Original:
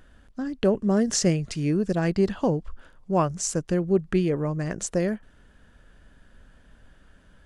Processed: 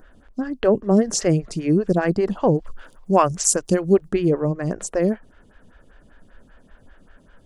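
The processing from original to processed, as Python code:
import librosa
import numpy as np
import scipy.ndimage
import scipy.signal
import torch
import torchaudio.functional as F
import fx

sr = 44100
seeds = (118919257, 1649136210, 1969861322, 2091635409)

y = fx.high_shelf(x, sr, hz=2900.0, db=fx.steps((0.0, -3.5), (2.54, 9.5), (4.07, -3.5)))
y = fx.stagger_phaser(y, sr, hz=5.1)
y = y * 10.0 ** (7.5 / 20.0)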